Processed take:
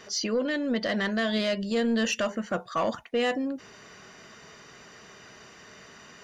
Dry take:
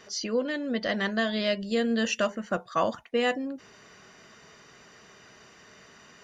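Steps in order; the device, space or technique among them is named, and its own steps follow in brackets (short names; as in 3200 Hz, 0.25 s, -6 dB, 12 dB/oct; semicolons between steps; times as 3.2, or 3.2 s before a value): soft clipper into limiter (soft clip -19 dBFS, distortion -18 dB; limiter -23 dBFS, peak gain reduction 3.5 dB); gain +3.5 dB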